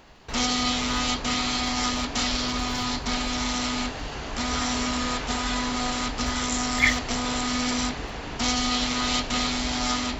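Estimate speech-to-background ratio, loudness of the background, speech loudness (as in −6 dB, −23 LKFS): −1.5 dB, −26.0 LKFS, −27.5 LKFS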